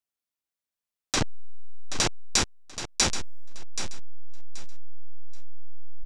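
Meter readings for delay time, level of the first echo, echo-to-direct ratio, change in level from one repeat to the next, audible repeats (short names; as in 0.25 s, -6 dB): 0.779 s, -10.5 dB, -10.5 dB, -13.0 dB, 2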